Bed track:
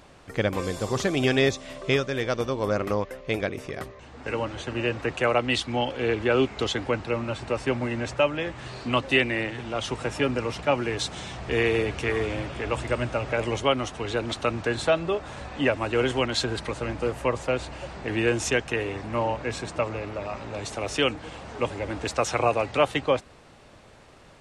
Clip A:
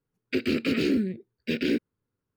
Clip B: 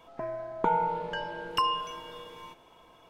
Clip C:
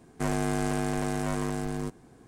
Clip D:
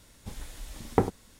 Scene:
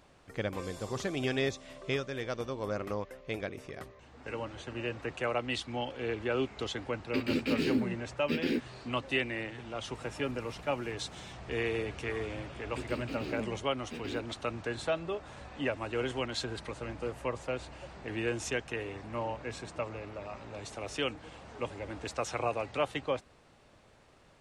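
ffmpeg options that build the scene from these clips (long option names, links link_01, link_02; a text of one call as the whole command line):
ffmpeg -i bed.wav -i cue0.wav -i cue1.wav -i cue2.wav -i cue3.wav -filter_complex "[1:a]asplit=2[link_01][link_02];[0:a]volume=-9.5dB[link_03];[link_01]asplit=2[link_04][link_05];[link_05]adelay=12,volume=-6.5dB[link_06];[link_04][link_06]amix=inputs=2:normalize=0[link_07];[4:a]acompressor=threshold=-44dB:ratio=6:attack=3.2:release=140:knee=1:detection=peak[link_08];[link_07]atrim=end=2.36,asetpts=PTS-STARTPTS,volume=-6dB,afade=type=in:duration=0.004:curve=hsin,afade=type=out:start_time=2.356:duration=0.004:curve=hsin,adelay=6810[link_09];[link_08]atrim=end=1.39,asetpts=PTS-STARTPTS,volume=-12.5dB,afade=type=in:duration=0.004:curve=hsin,afade=type=out:start_time=1.386:duration=0.004:curve=hsin,adelay=438354S[link_10];[link_02]atrim=end=2.36,asetpts=PTS-STARTPTS,volume=-15dB,afade=type=in:duration=0.004:curve=hsin,afade=type=out:start_time=2.356:duration=0.004:curve=hsin,adelay=12430[link_11];[link_03][link_09][link_10][link_11]amix=inputs=4:normalize=0" out.wav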